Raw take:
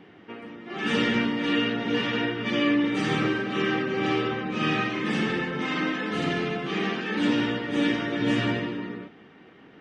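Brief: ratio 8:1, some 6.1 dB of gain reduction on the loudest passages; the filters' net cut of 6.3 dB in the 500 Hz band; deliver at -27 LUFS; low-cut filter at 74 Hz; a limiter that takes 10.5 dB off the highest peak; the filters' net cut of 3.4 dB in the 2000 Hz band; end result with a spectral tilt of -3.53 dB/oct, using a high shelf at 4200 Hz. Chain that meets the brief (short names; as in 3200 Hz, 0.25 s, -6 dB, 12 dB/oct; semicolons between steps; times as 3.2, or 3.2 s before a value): HPF 74 Hz; bell 500 Hz -8.5 dB; bell 2000 Hz -4.5 dB; high shelf 4200 Hz +3.5 dB; compressor 8:1, threshold -28 dBFS; gain +10.5 dB; limiter -19 dBFS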